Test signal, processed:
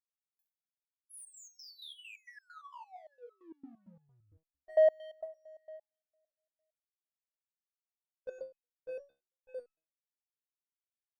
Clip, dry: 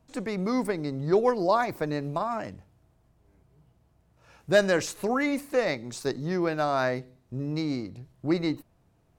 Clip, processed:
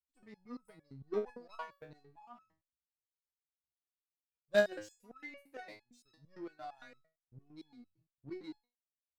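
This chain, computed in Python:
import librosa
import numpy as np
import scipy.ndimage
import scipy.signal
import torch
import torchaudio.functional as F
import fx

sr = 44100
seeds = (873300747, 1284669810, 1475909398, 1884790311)

p1 = fx.bin_expand(x, sr, power=1.5)
p2 = fx.level_steps(p1, sr, step_db=23)
p3 = p1 + (p2 * 10.0 ** (-1.0 / 20.0))
p4 = fx.power_curve(p3, sr, exponent=1.4)
p5 = fx.resonator_held(p4, sr, hz=8.8, low_hz=69.0, high_hz=1300.0)
y = p5 * 10.0 ** (-3.0 / 20.0)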